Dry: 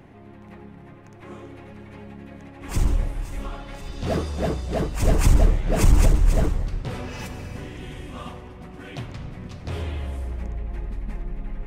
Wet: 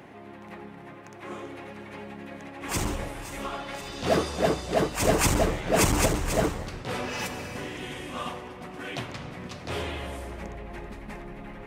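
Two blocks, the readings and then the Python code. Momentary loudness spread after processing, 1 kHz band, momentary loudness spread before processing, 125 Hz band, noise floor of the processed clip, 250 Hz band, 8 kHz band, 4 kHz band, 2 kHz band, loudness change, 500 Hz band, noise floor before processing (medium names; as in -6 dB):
18 LU, +4.5 dB, 22 LU, -7.5 dB, -45 dBFS, -0.5 dB, +5.5 dB, +5.5 dB, +5.0 dB, -2.5 dB, +3.0 dB, -45 dBFS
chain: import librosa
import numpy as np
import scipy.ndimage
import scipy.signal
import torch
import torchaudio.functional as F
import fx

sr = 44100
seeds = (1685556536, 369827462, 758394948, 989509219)

y = fx.highpass(x, sr, hz=410.0, slope=6)
y = fx.attack_slew(y, sr, db_per_s=180.0)
y = y * librosa.db_to_amplitude(5.5)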